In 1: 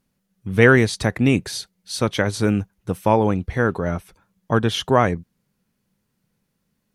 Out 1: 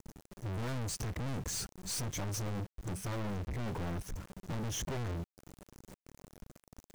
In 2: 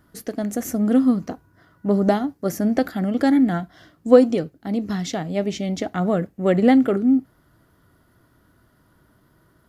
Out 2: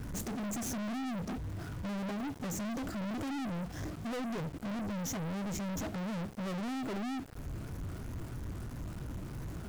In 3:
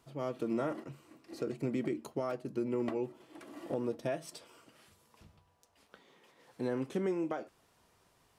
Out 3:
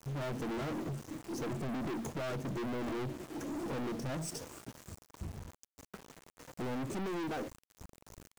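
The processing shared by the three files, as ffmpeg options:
ffmpeg -i in.wav -filter_complex "[0:a]afftfilt=real='re*pow(10,8/40*sin(2*PI*(1.1*log(max(b,1)*sr/1024/100)/log(2)-(3)*(pts-256)/sr)))':imag='im*pow(10,8/40*sin(2*PI*(1.1*log(max(b,1)*sr/1024/100)/log(2)-(3)*(pts-256)/sr)))':win_size=1024:overlap=0.75,aemphasis=mode=reproduction:type=bsi,acrossover=split=490[link_01][link_02];[link_01]acontrast=33[link_03];[link_03][link_02]amix=inputs=2:normalize=0,highshelf=frequency=5000:width_type=q:width=3:gain=9.5,acompressor=threshold=-23dB:ratio=5,aeval=exprs='val(0)*gte(abs(val(0)),0.00237)':channel_layout=same,aeval=exprs='(tanh(158*val(0)+0.15)-tanh(0.15))/158':channel_layout=same,volume=8dB" out.wav

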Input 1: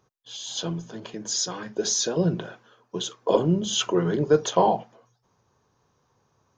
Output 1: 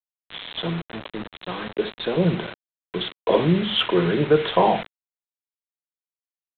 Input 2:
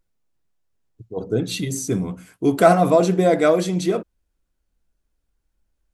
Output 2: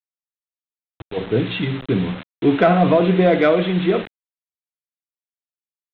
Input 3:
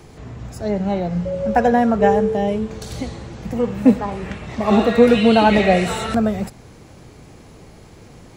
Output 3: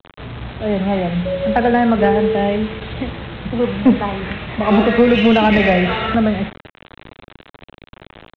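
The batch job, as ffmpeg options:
ffmpeg -i in.wav -filter_complex "[0:a]aecho=1:1:61|122|183:0.168|0.0604|0.0218,aresample=8000,acrusher=bits=5:mix=0:aa=0.000001,aresample=44100,adynamicequalizer=threshold=0.0178:dfrequency=2100:dqfactor=1.2:tfrequency=2100:tqfactor=1.2:attack=5:release=100:ratio=0.375:range=2.5:mode=boostabove:tftype=bell,acrossover=split=370|3000[link_01][link_02][link_03];[link_02]acompressor=threshold=-16dB:ratio=3[link_04];[link_01][link_04][link_03]amix=inputs=3:normalize=0,asoftclip=type=tanh:threshold=-6dB,volume=3dB" out.wav

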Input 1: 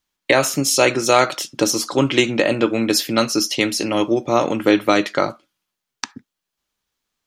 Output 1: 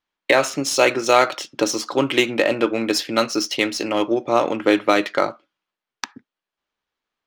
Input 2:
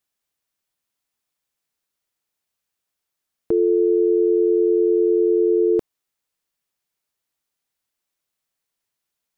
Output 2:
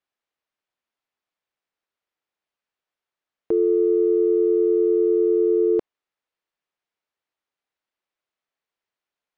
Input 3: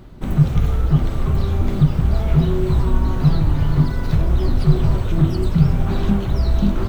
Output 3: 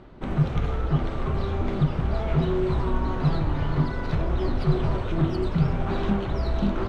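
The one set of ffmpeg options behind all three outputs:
ffmpeg -i in.wav -af "bass=frequency=250:gain=-9,treble=frequency=4000:gain=-3,adynamicsmooth=sensitivity=3:basefreq=4200" out.wav

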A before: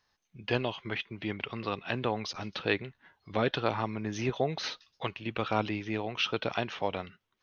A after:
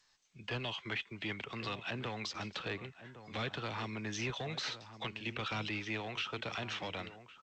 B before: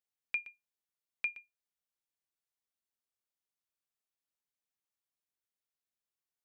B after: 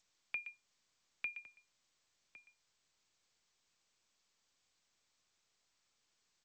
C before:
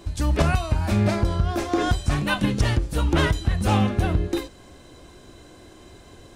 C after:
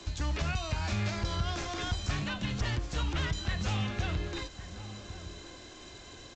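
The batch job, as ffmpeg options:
ffmpeg -i in.wav -filter_complex "[0:a]tiltshelf=frequency=1400:gain=-5.5,acrossover=split=170|550|2000[link_01][link_02][link_03][link_04];[link_01]acompressor=threshold=-30dB:ratio=4[link_05];[link_02]acompressor=threshold=-41dB:ratio=4[link_06];[link_03]acompressor=threshold=-38dB:ratio=4[link_07];[link_04]acompressor=threshold=-38dB:ratio=4[link_08];[link_05][link_06][link_07][link_08]amix=inputs=4:normalize=0,acrossover=split=180|1500[link_09][link_10][link_11];[link_10]asoftclip=type=hard:threshold=-38dB[link_12];[link_11]alimiter=level_in=5dB:limit=-24dB:level=0:latency=1:release=79,volume=-5dB[link_13];[link_09][link_12][link_13]amix=inputs=3:normalize=0,asplit=2[link_14][link_15];[link_15]adelay=1108,volume=-12dB,highshelf=frequency=4000:gain=-24.9[link_16];[link_14][link_16]amix=inputs=2:normalize=0" -ar 16000 -c:a g722 out.g722

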